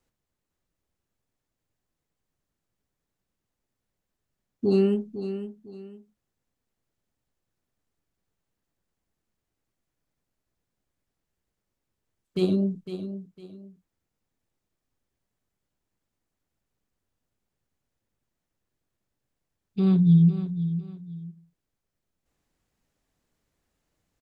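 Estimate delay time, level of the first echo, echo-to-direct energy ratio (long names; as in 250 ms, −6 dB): 505 ms, −11.0 dB, −10.5 dB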